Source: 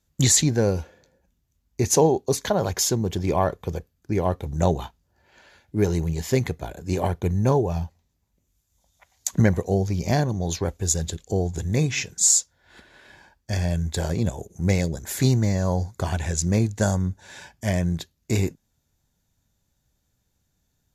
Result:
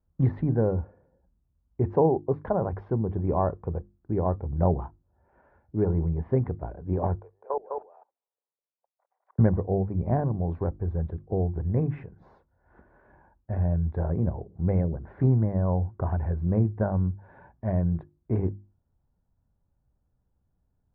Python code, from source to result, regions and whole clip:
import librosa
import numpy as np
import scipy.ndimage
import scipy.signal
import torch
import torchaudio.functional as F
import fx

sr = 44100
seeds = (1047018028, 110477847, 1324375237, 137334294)

y = fx.chain(x, sr, fx.ellip_highpass(hz=450.0, order=4, stop_db=70),
    fx.level_steps(step_db=23),
    fx.echo_single(ms=205, db=-4.0), at=(7.21, 9.39))
y = scipy.signal.sosfilt(scipy.signal.cheby2(4, 80, 6900.0, 'lowpass', fs=sr, output='sos'), y)
y = fx.low_shelf(y, sr, hz=93.0, db=7.0)
y = fx.hum_notches(y, sr, base_hz=50, count=7)
y = y * librosa.db_to_amplitude(-3.5)